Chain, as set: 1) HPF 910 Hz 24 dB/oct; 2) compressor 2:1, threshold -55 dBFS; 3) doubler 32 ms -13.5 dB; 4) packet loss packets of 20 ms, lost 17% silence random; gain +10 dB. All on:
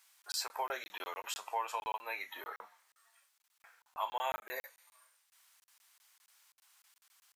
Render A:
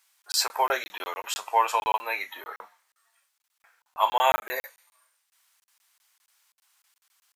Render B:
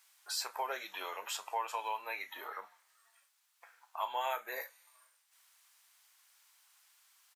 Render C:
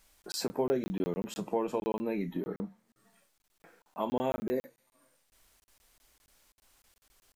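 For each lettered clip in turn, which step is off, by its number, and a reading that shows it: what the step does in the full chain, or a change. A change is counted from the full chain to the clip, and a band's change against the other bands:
2, mean gain reduction 10.0 dB; 4, momentary loudness spread change -1 LU; 1, 250 Hz band +31.0 dB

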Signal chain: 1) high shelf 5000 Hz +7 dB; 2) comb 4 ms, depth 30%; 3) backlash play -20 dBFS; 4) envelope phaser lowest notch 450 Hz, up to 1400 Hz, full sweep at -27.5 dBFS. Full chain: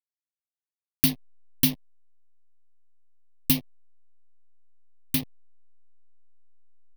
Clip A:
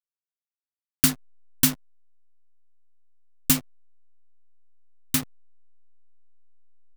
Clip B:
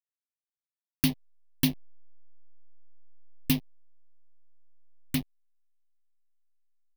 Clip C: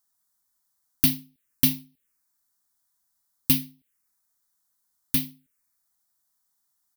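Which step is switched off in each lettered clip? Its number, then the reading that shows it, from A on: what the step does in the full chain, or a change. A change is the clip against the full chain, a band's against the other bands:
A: 4, 1 kHz band +7.5 dB; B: 1, 8 kHz band -6.0 dB; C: 3, distortion -9 dB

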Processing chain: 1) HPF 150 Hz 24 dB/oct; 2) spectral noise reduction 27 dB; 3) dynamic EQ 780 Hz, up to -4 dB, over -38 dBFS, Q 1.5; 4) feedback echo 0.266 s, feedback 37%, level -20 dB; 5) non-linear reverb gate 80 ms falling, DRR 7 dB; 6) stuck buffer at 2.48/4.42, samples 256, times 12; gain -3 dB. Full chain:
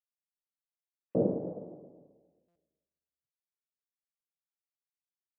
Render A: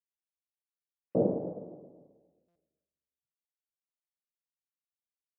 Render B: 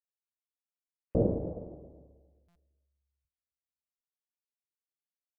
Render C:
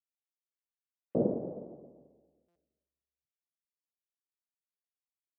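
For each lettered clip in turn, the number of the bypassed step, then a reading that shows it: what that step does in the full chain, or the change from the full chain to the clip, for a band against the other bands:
3, 1 kHz band +3.0 dB; 1, 125 Hz band +5.5 dB; 5, 125 Hz band -1.5 dB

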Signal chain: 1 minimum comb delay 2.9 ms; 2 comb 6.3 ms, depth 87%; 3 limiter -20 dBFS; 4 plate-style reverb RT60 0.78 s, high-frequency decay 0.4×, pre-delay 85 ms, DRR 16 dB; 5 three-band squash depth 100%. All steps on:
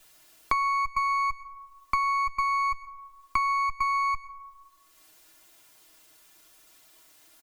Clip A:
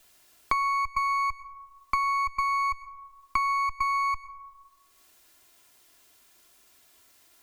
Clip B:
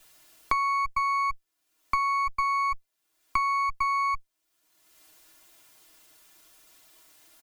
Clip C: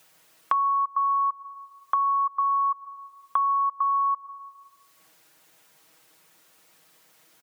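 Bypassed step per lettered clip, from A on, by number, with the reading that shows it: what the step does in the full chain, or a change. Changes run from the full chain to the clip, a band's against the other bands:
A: 2, momentary loudness spread change -4 LU; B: 4, momentary loudness spread change -11 LU; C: 1, crest factor change -1.5 dB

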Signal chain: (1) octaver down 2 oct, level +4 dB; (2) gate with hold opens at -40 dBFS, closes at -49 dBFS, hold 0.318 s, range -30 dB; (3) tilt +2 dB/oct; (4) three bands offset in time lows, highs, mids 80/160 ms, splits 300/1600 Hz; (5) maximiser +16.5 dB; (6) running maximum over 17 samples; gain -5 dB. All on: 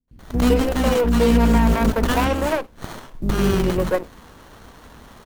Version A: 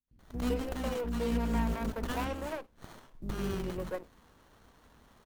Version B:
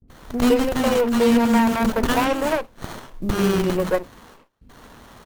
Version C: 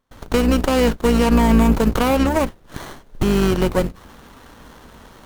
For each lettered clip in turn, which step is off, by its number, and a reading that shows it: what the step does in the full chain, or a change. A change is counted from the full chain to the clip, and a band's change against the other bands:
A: 5, crest factor change +2.5 dB; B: 1, 125 Hz band -7.5 dB; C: 4, momentary loudness spread change -1 LU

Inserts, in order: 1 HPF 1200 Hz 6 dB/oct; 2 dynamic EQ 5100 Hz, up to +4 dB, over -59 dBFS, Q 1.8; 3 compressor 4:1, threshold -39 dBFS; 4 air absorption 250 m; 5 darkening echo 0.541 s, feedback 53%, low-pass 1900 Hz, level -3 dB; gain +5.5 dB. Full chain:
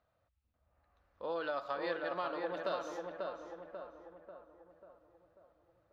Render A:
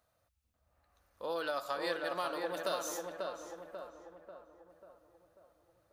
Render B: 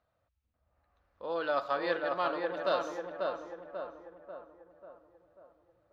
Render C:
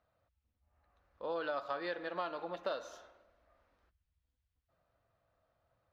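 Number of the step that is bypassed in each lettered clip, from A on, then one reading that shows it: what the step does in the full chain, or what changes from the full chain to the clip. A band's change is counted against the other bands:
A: 4, 4 kHz band +6.0 dB; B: 3, 125 Hz band -2.0 dB; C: 5, echo-to-direct -4.0 dB to none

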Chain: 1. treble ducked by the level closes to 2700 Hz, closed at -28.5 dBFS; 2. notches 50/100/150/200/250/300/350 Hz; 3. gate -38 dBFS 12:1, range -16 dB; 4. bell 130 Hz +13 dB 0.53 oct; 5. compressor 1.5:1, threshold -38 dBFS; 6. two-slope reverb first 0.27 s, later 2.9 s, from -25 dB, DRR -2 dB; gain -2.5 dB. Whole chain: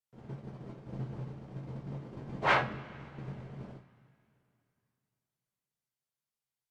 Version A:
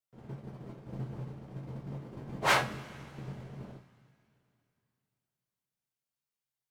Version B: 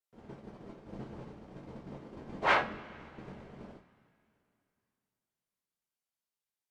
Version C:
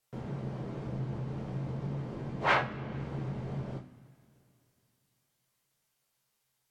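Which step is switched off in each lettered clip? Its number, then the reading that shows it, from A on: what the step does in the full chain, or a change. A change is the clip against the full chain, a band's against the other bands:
1, 4 kHz band +5.5 dB; 4, 125 Hz band -9.5 dB; 3, momentary loudness spread change -8 LU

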